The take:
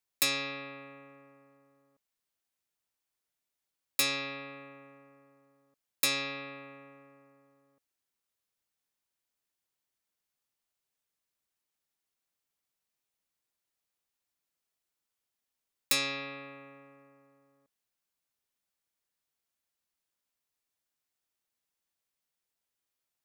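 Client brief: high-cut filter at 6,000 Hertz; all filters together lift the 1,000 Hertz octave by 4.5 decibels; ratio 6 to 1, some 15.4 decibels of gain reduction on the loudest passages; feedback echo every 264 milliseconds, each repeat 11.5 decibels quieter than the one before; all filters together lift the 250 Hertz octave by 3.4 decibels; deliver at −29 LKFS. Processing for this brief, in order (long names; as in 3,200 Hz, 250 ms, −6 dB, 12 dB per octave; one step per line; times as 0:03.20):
low-pass filter 6,000 Hz
parametric band 250 Hz +3.5 dB
parametric band 1,000 Hz +5.5 dB
downward compressor 6 to 1, threshold −42 dBFS
repeating echo 264 ms, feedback 27%, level −11.5 dB
level +17 dB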